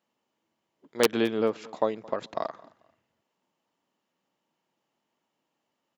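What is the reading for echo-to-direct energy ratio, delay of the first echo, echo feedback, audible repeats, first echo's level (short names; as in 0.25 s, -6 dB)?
-22.5 dB, 0.22 s, 26%, 2, -23.0 dB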